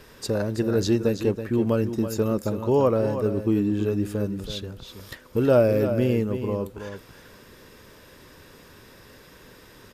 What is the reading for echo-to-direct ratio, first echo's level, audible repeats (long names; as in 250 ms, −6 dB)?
−9.5 dB, −9.5 dB, 1